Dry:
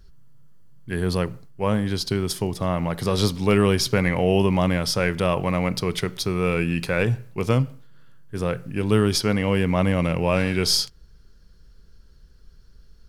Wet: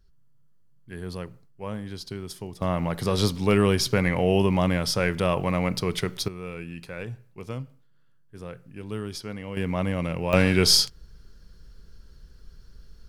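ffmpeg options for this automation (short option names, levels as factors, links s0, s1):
-af "asetnsamples=n=441:p=0,asendcmd='2.62 volume volume -2dB;6.28 volume volume -14dB;9.57 volume volume -6dB;10.33 volume volume 2.5dB',volume=0.266"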